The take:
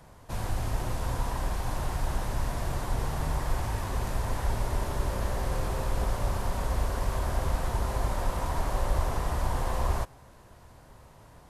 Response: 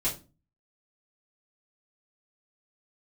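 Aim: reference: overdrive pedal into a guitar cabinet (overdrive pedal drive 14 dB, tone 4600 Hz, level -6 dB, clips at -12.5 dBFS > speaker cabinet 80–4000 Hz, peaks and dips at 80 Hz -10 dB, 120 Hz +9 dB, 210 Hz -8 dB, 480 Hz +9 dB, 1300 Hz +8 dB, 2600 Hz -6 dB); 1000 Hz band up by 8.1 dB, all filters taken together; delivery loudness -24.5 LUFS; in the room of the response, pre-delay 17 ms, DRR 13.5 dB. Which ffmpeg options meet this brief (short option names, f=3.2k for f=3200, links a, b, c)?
-filter_complex "[0:a]equalizer=f=1k:t=o:g=7,asplit=2[a][b];[1:a]atrim=start_sample=2205,adelay=17[c];[b][c]afir=irnorm=-1:irlink=0,volume=-20dB[d];[a][d]amix=inputs=2:normalize=0,asplit=2[e][f];[f]highpass=f=720:p=1,volume=14dB,asoftclip=type=tanh:threshold=-12.5dB[g];[e][g]amix=inputs=2:normalize=0,lowpass=f=4.6k:p=1,volume=-6dB,highpass=80,equalizer=f=80:t=q:w=4:g=-10,equalizer=f=120:t=q:w=4:g=9,equalizer=f=210:t=q:w=4:g=-8,equalizer=f=480:t=q:w=4:g=9,equalizer=f=1.3k:t=q:w=4:g=8,equalizer=f=2.6k:t=q:w=4:g=-6,lowpass=f=4k:w=0.5412,lowpass=f=4k:w=1.3066,volume=-1dB"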